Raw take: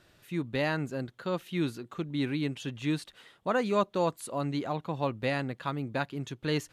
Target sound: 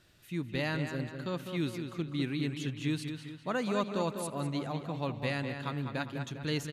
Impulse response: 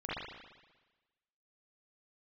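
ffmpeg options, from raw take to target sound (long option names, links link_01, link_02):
-filter_complex "[0:a]equalizer=frequency=710:width_type=o:width=2.7:gain=-6.5,asplit=2[link_01][link_02];[link_02]adelay=201,lowpass=frequency=4800:poles=1,volume=-7dB,asplit=2[link_03][link_04];[link_04]adelay=201,lowpass=frequency=4800:poles=1,volume=0.48,asplit=2[link_05][link_06];[link_06]adelay=201,lowpass=frequency=4800:poles=1,volume=0.48,asplit=2[link_07][link_08];[link_08]adelay=201,lowpass=frequency=4800:poles=1,volume=0.48,asplit=2[link_09][link_10];[link_10]adelay=201,lowpass=frequency=4800:poles=1,volume=0.48,asplit=2[link_11][link_12];[link_12]adelay=201,lowpass=frequency=4800:poles=1,volume=0.48[link_13];[link_01][link_03][link_05][link_07][link_09][link_11][link_13]amix=inputs=7:normalize=0,asplit=2[link_14][link_15];[1:a]atrim=start_sample=2205,adelay=76[link_16];[link_15][link_16]afir=irnorm=-1:irlink=0,volume=-23.5dB[link_17];[link_14][link_17]amix=inputs=2:normalize=0"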